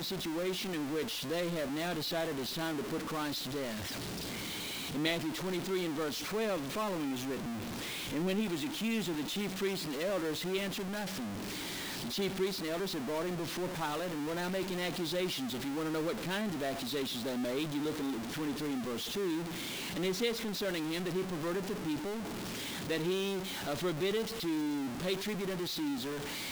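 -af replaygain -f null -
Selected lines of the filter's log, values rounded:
track_gain = +16.7 dB
track_peak = 0.087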